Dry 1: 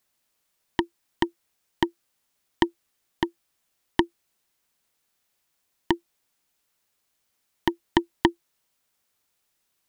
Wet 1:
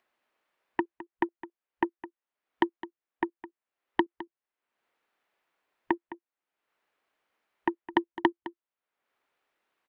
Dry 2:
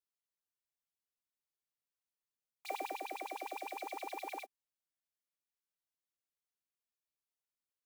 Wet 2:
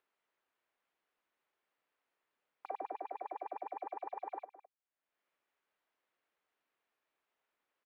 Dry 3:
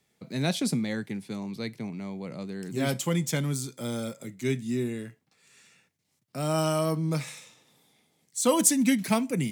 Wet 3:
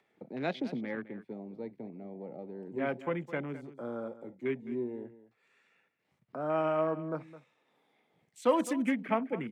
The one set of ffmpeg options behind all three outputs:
ffmpeg -i in.wav -filter_complex "[0:a]acompressor=mode=upward:threshold=-33dB:ratio=2.5,afwtdn=0.0126,acrossover=split=270 2700:gain=0.141 1 0.0708[link_01][link_02][link_03];[link_01][link_02][link_03]amix=inputs=3:normalize=0,asplit=2[link_04][link_05];[link_05]aecho=0:1:211:0.168[link_06];[link_04][link_06]amix=inputs=2:normalize=0,volume=-1.5dB" out.wav

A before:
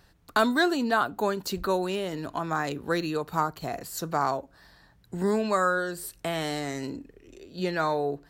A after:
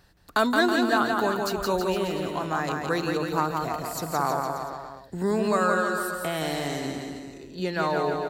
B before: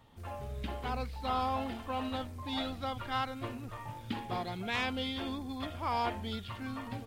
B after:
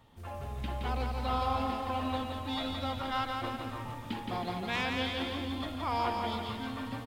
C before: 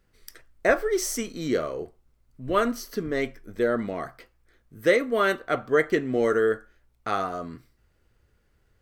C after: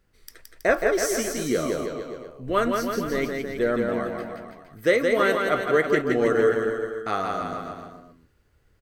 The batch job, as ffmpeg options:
ffmpeg -i in.wav -af "aecho=1:1:170|323|460.7|584.6|696.2:0.631|0.398|0.251|0.158|0.1" out.wav

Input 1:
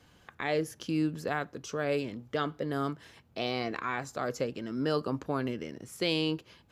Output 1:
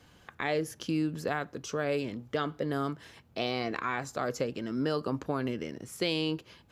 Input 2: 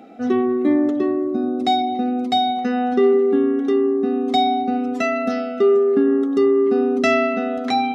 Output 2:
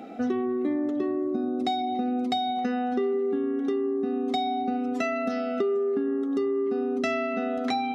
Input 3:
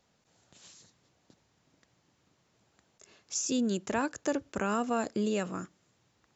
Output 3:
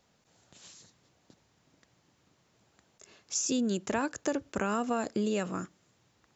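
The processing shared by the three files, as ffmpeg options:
ffmpeg -i in.wav -af "acompressor=threshold=-27dB:ratio=6,volume=2dB" out.wav

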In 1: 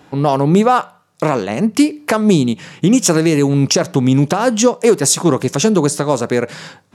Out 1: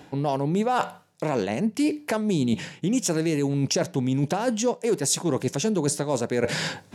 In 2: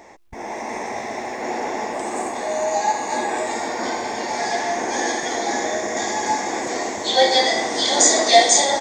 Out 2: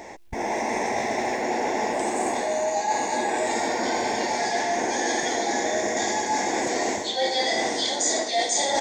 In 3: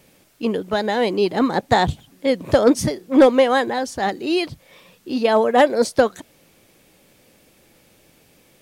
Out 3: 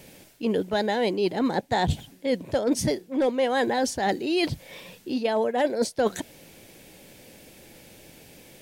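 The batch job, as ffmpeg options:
ffmpeg -i in.wav -af "equalizer=frequency=1200:width_type=o:width=0.3:gain=-9.5,areverse,acompressor=threshold=-27dB:ratio=8,areverse,volume=5.5dB" out.wav

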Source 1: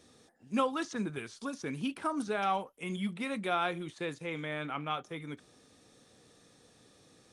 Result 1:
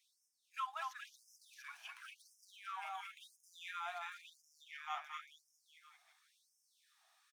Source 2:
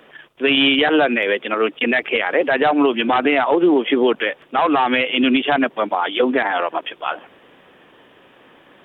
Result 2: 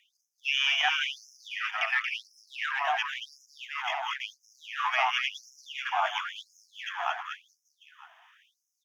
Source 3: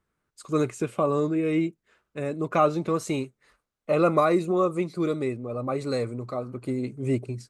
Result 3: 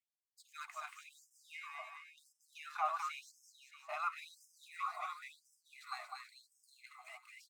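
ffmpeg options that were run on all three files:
ffmpeg -i in.wav -filter_complex "[0:a]acrossover=split=170|980|3000[link_01][link_02][link_03][link_04];[link_04]aeval=exprs='max(val(0),0)':channel_layout=same[link_05];[link_01][link_02][link_03][link_05]amix=inputs=4:normalize=0,acrossover=split=6700[link_06][link_07];[link_07]acompressor=threshold=-57dB:ratio=4:attack=1:release=60[link_08];[link_06][link_08]amix=inputs=2:normalize=0,aecho=1:1:230|437|623.3|791|941.9:0.631|0.398|0.251|0.158|0.1,afftfilt=real='re*gte(b*sr/1024,610*pow(5100/610,0.5+0.5*sin(2*PI*0.95*pts/sr)))':imag='im*gte(b*sr/1024,610*pow(5100/610,0.5+0.5*sin(2*PI*0.95*pts/sr)))':win_size=1024:overlap=0.75,volume=-7.5dB" out.wav

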